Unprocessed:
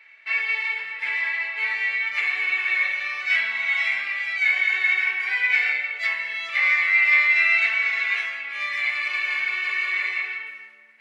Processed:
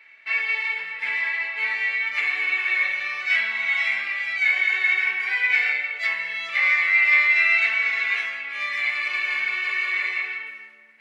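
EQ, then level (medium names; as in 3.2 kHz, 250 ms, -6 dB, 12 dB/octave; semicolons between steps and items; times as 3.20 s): bass shelf 320 Hz +6.5 dB; 0.0 dB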